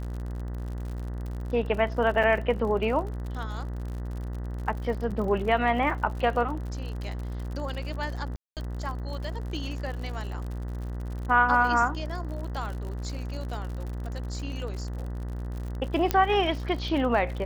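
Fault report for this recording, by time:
buzz 60 Hz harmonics 33 -33 dBFS
crackle 65/s -35 dBFS
2.23 gap 5 ms
5.11 gap 3.9 ms
8.36–8.57 gap 0.208 s
16.11 pop -9 dBFS

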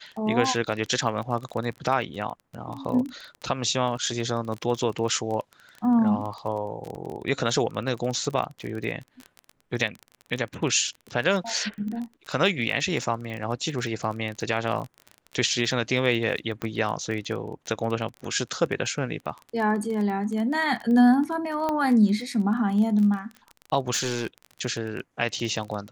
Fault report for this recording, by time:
crackle 23/s -30 dBFS
6.96–6.97 gap 5.3 ms
16.62 pop -17 dBFS
21.69 pop -14 dBFS
23.91–24.27 clipped -21.5 dBFS

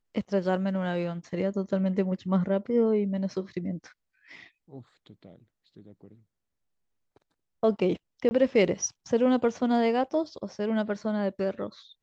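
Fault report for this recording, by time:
8.29–8.31 gap 20 ms

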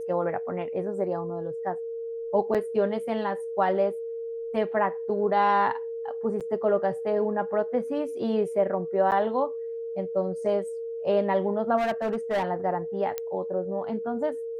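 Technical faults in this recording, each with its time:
tone 460 Hz -31 dBFS
2.54–2.55 gap 7 ms
6.4–6.41 gap 7.4 ms
9.11–9.12 gap 8.8 ms
11.77–12.43 clipped -22.5 dBFS
13.18 pop -16 dBFS

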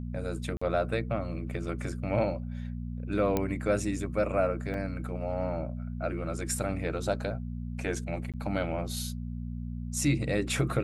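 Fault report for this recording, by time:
hum 60 Hz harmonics 4 -36 dBFS
0.57–0.61 gap 45 ms
1.54 gap 2.6 ms
3.37 pop -14 dBFS
4.74 gap 2.8 ms
8.32–8.34 gap 17 ms

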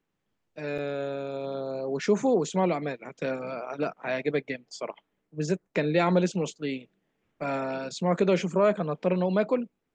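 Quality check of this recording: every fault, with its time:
0.78 gap 4.9 ms

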